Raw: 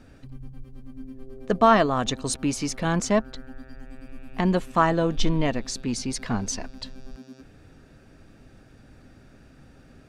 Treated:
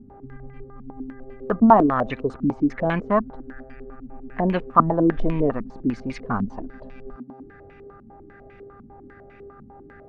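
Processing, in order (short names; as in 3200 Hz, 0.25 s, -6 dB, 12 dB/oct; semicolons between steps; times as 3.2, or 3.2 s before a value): buzz 400 Hz, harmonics 5, -51 dBFS -7 dB/oct; stepped low-pass 10 Hz 230–2400 Hz; gain -1 dB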